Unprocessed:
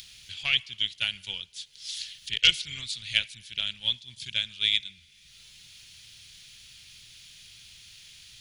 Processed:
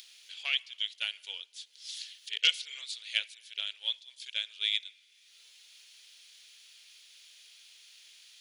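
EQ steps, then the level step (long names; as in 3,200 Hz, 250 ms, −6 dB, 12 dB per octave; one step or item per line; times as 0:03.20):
linear-phase brick-wall high-pass 400 Hz
−5.5 dB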